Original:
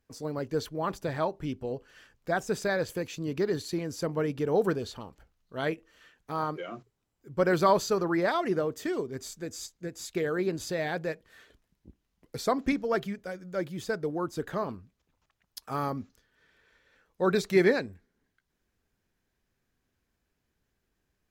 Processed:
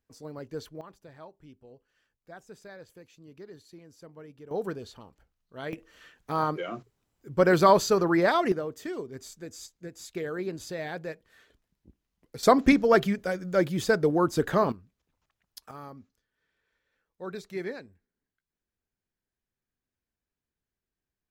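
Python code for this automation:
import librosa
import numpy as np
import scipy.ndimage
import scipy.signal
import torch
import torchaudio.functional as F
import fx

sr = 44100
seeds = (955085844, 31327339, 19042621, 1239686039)

y = fx.gain(x, sr, db=fx.steps((0.0, -7.0), (0.81, -18.0), (4.51, -6.5), (5.73, 4.0), (8.52, -4.0), (12.43, 8.0), (14.72, -3.5), (15.71, -12.5)))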